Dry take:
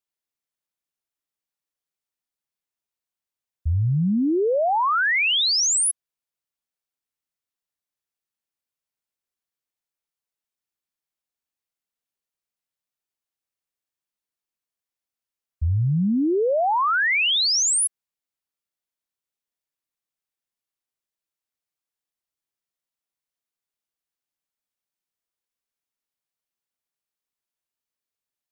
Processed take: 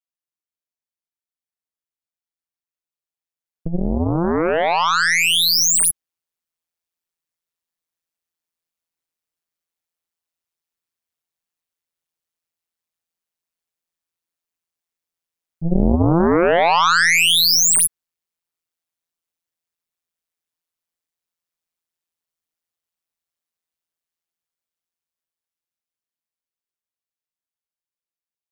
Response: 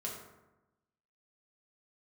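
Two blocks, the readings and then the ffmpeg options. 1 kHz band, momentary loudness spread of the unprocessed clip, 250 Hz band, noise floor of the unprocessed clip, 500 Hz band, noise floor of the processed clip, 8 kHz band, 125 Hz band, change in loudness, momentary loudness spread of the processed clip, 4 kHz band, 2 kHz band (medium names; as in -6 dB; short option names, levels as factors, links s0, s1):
+4.5 dB, 8 LU, +4.0 dB, under -85 dBFS, +4.5 dB, under -85 dBFS, +5.0 dB, 0.0 dB, +5.0 dB, 11 LU, +5.0 dB, +5.0 dB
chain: -af "aeval=exprs='val(0)*sin(2*PI*84*n/s)':c=same,aeval=exprs='0.141*(cos(1*acos(clip(val(0)/0.141,-1,1)))-cos(1*PI/2))+0.00631*(cos(2*acos(clip(val(0)/0.141,-1,1)))-cos(2*PI/2))+0.0562*(cos(3*acos(clip(val(0)/0.141,-1,1)))-cos(3*PI/2))+0.0178*(cos(5*acos(clip(val(0)/0.141,-1,1)))-cos(5*PI/2))+0.00141*(cos(6*acos(clip(val(0)/0.141,-1,1)))-cos(6*PI/2))':c=same,dynaudnorm=f=680:g=13:m=3.16,volume=1.33"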